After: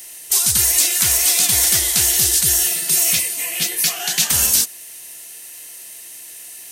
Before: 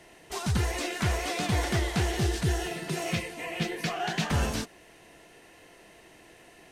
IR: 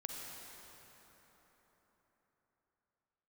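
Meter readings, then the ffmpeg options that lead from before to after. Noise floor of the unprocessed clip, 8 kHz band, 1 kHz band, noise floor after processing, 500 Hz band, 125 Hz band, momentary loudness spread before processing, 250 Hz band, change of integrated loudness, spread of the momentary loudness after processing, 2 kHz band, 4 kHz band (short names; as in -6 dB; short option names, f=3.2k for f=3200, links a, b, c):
-55 dBFS, +26.0 dB, -0.5 dB, -37 dBFS, -2.5 dB, -4.5 dB, 6 LU, -4.0 dB, +15.5 dB, 21 LU, +7.0 dB, +15.5 dB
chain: -af "aemphasis=mode=production:type=75kf,aeval=exprs='0.266*(cos(1*acos(clip(val(0)/0.266,-1,1)))-cos(1*PI/2))+0.00211*(cos(6*acos(clip(val(0)/0.266,-1,1)))-cos(6*PI/2))':c=same,crystalizer=i=8:c=0,volume=-4.5dB"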